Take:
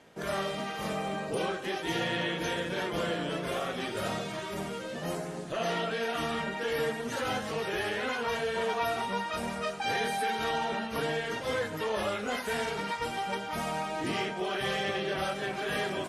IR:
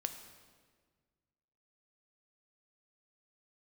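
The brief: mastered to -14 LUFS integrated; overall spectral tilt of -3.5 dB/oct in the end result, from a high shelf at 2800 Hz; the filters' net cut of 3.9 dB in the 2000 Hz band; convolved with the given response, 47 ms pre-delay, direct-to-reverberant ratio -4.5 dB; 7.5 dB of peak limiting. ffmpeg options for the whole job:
-filter_complex "[0:a]equalizer=f=2k:t=o:g=-8,highshelf=f=2.8k:g=7.5,alimiter=level_in=3dB:limit=-24dB:level=0:latency=1,volume=-3dB,asplit=2[a][b];[1:a]atrim=start_sample=2205,adelay=47[c];[b][c]afir=irnorm=-1:irlink=0,volume=5dB[d];[a][d]amix=inputs=2:normalize=0,volume=15.5dB"

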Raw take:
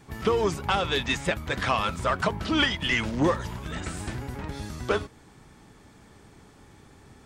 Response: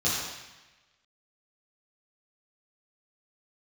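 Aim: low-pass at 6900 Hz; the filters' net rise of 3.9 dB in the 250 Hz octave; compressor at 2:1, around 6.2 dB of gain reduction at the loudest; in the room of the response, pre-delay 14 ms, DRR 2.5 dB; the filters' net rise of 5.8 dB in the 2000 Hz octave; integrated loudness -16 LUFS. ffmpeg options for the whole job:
-filter_complex "[0:a]lowpass=6.9k,equalizer=f=250:t=o:g=5,equalizer=f=2k:t=o:g=7,acompressor=threshold=-26dB:ratio=2,asplit=2[a][b];[1:a]atrim=start_sample=2205,adelay=14[c];[b][c]afir=irnorm=-1:irlink=0,volume=-14dB[d];[a][d]amix=inputs=2:normalize=0,volume=10dB"

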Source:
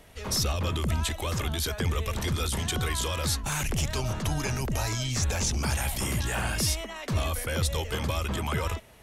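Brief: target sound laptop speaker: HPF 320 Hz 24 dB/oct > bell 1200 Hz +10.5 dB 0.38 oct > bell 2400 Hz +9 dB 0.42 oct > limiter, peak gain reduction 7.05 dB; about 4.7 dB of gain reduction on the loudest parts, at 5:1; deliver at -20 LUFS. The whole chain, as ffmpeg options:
-af "acompressor=threshold=-28dB:ratio=5,highpass=f=320:w=0.5412,highpass=f=320:w=1.3066,equalizer=f=1.2k:t=o:w=0.38:g=10.5,equalizer=f=2.4k:t=o:w=0.42:g=9,volume=12.5dB,alimiter=limit=-10dB:level=0:latency=1"

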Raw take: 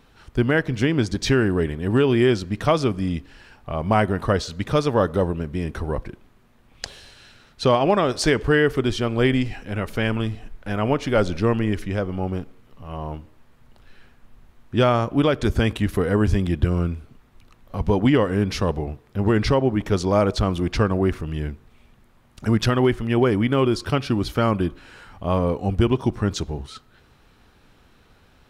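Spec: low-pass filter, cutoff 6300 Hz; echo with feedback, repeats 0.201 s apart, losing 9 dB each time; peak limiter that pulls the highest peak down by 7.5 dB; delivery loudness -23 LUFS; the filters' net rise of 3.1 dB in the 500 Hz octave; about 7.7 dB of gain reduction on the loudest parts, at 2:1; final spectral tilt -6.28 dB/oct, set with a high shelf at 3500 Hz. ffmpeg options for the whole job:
-af "lowpass=6.3k,equalizer=f=500:t=o:g=4,highshelf=f=3.5k:g=-5.5,acompressor=threshold=-26dB:ratio=2,alimiter=limit=-19.5dB:level=0:latency=1,aecho=1:1:201|402|603|804:0.355|0.124|0.0435|0.0152,volume=7dB"

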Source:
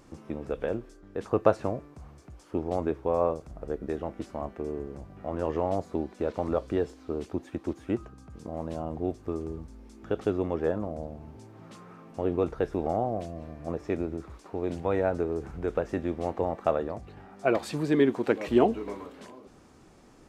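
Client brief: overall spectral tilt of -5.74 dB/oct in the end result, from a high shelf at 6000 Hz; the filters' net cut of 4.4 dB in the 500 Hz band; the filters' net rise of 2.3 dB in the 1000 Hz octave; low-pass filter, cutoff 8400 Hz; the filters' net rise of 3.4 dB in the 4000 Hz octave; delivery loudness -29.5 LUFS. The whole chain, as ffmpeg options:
-af "lowpass=8.4k,equalizer=f=500:t=o:g=-7.5,equalizer=f=1k:t=o:g=6.5,equalizer=f=4k:t=o:g=6,highshelf=f=6k:g=-5.5,volume=3.5dB"

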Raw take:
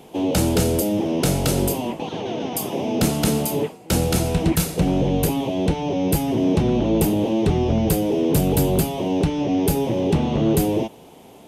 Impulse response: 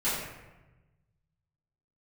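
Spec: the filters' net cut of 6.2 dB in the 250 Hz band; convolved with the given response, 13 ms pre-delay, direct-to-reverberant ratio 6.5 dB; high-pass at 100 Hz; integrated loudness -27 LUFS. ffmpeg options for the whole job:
-filter_complex "[0:a]highpass=100,equalizer=f=250:t=o:g=-8.5,asplit=2[a][b];[1:a]atrim=start_sample=2205,adelay=13[c];[b][c]afir=irnorm=-1:irlink=0,volume=-16.5dB[d];[a][d]amix=inputs=2:normalize=0,volume=-3.5dB"

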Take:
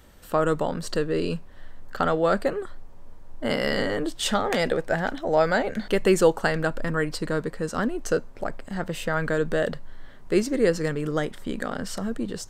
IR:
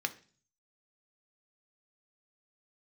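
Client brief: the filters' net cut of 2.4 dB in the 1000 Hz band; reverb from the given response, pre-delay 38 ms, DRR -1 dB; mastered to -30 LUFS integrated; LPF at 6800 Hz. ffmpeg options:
-filter_complex "[0:a]lowpass=6.8k,equalizer=f=1k:t=o:g=-3.5,asplit=2[a][b];[1:a]atrim=start_sample=2205,adelay=38[c];[b][c]afir=irnorm=-1:irlink=0,volume=-3dB[d];[a][d]amix=inputs=2:normalize=0,volume=-5.5dB"

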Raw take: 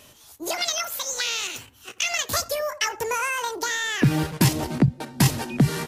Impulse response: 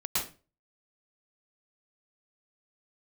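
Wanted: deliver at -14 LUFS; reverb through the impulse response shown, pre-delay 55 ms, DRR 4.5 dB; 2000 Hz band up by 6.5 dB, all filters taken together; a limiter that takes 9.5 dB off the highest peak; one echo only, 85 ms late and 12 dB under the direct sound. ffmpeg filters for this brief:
-filter_complex "[0:a]equalizer=f=2k:t=o:g=8,alimiter=limit=-13.5dB:level=0:latency=1,aecho=1:1:85:0.251,asplit=2[a][b];[1:a]atrim=start_sample=2205,adelay=55[c];[b][c]afir=irnorm=-1:irlink=0,volume=-11.5dB[d];[a][d]amix=inputs=2:normalize=0,volume=9dB"

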